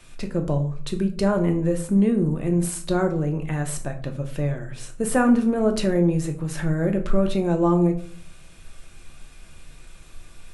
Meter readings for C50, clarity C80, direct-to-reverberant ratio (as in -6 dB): 12.0 dB, 16.0 dB, 4.5 dB